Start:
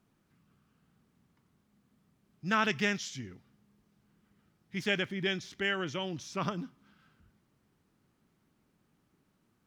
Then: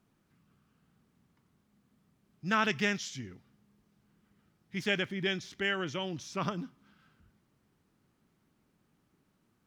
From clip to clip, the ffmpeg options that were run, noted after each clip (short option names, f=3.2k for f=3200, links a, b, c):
-af anull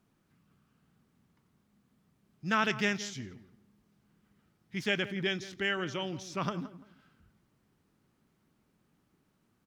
-filter_complex "[0:a]asplit=2[a][b];[b]adelay=170,lowpass=f=1.6k:p=1,volume=-14dB,asplit=2[c][d];[d]adelay=170,lowpass=f=1.6k:p=1,volume=0.26,asplit=2[e][f];[f]adelay=170,lowpass=f=1.6k:p=1,volume=0.26[g];[a][c][e][g]amix=inputs=4:normalize=0"